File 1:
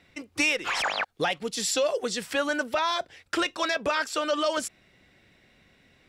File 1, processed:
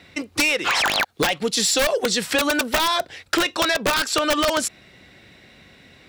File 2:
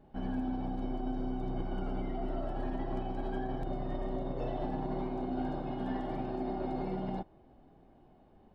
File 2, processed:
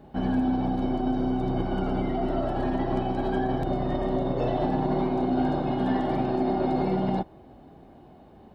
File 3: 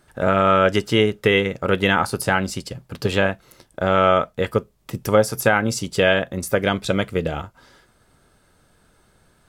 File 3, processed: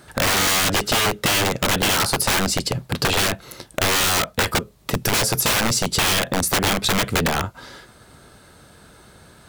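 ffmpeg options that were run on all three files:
ffmpeg -i in.wav -filter_complex "[0:a]highpass=49,acrossover=split=2600[link_01][link_02];[link_01]aeval=exprs='(mod(8.91*val(0)+1,2)-1)/8.91':channel_layout=same[link_03];[link_02]equalizer=frequency=4000:width_type=o:width=0.26:gain=4.5[link_04];[link_03][link_04]amix=inputs=2:normalize=0,aeval=exprs='0.316*sin(PI/2*2.24*val(0)/0.316)':channel_layout=same,acompressor=threshold=-17dB:ratio=6" out.wav

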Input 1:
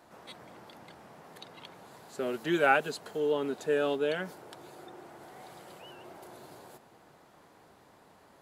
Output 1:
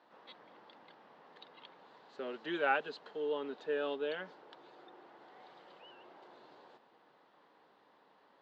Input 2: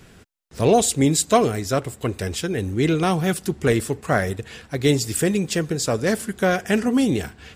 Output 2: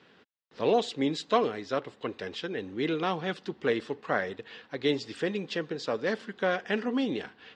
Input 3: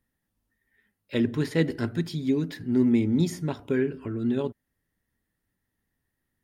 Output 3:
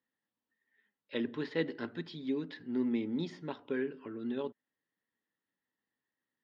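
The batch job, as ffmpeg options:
ffmpeg -i in.wav -af "highpass=330,equalizer=frequency=370:width_type=q:width=4:gain=-4,equalizer=frequency=670:width_type=q:width=4:gain=-6,equalizer=frequency=1400:width_type=q:width=4:gain=-3,equalizer=frequency=2300:width_type=q:width=4:gain=-5,lowpass=frequency=4000:width=0.5412,lowpass=frequency=4000:width=1.3066,volume=-4dB" out.wav

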